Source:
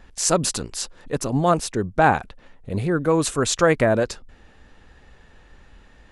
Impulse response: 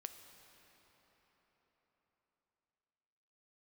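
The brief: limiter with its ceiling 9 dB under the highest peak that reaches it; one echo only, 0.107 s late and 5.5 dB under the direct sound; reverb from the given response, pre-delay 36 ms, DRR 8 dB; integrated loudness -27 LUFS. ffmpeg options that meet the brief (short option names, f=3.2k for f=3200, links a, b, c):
-filter_complex "[0:a]alimiter=limit=-13.5dB:level=0:latency=1,aecho=1:1:107:0.531,asplit=2[a][b];[1:a]atrim=start_sample=2205,adelay=36[c];[b][c]afir=irnorm=-1:irlink=0,volume=-3.5dB[d];[a][d]amix=inputs=2:normalize=0,volume=-3.5dB"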